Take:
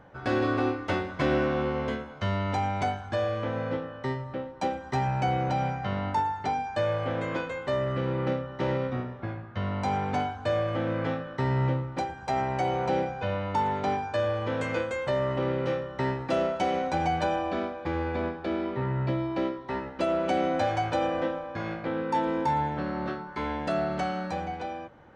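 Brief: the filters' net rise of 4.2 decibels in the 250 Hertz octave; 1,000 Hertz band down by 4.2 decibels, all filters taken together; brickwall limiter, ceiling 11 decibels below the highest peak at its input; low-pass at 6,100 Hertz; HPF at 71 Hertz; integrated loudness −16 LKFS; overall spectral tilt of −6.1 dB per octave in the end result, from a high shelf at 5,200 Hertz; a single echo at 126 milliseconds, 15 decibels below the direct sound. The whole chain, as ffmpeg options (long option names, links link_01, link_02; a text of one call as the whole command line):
ffmpeg -i in.wav -af "highpass=71,lowpass=6100,equalizer=frequency=250:width_type=o:gain=6,equalizer=frequency=1000:width_type=o:gain=-6.5,highshelf=frequency=5200:gain=4,alimiter=limit=-23dB:level=0:latency=1,aecho=1:1:126:0.178,volume=16dB" out.wav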